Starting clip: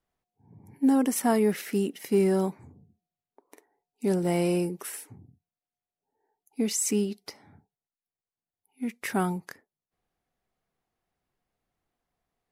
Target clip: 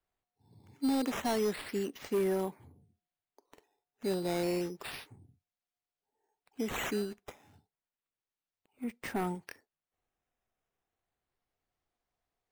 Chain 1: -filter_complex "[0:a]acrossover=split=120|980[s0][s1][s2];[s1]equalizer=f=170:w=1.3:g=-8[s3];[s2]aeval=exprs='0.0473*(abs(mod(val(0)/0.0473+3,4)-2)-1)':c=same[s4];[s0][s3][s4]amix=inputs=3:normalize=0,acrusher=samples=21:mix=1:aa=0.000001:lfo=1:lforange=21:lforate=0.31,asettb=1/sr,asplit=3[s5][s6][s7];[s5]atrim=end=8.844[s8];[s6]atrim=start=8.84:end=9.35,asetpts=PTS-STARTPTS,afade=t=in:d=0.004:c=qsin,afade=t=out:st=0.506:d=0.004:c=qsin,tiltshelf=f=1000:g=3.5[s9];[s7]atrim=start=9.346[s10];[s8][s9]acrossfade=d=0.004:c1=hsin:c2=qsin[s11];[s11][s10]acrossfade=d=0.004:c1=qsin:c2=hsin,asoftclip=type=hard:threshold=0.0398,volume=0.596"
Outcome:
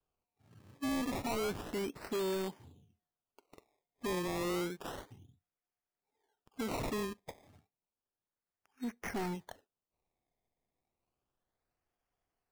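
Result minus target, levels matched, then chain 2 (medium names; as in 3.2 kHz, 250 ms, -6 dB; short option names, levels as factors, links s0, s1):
hard clipper: distortion +9 dB; decimation with a swept rate: distortion +8 dB
-filter_complex "[0:a]acrossover=split=120|980[s0][s1][s2];[s1]equalizer=f=170:w=1.3:g=-8[s3];[s2]aeval=exprs='0.0473*(abs(mod(val(0)/0.0473+3,4)-2)-1)':c=same[s4];[s0][s3][s4]amix=inputs=3:normalize=0,acrusher=samples=7:mix=1:aa=0.000001:lfo=1:lforange=7:lforate=0.31,asettb=1/sr,asplit=3[s5][s6][s7];[s5]atrim=end=8.844[s8];[s6]atrim=start=8.84:end=9.35,asetpts=PTS-STARTPTS,afade=t=in:d=0.004:c=qsin,afade=t=out:st=0.506:d=0.004:c=qsin,tiltshelf=f=1000:g=3.5[s9];[s7]atrim=start=9.346[s10];[s8][s9]acrossfade=d=0.004:c1=hsin:c2=qsin[s11];[s11][s10]acrossfade=d=0.004:c1=qsin:c2=hsin,asoftclip=type=hard:threshold=0.0944,volume=0.596"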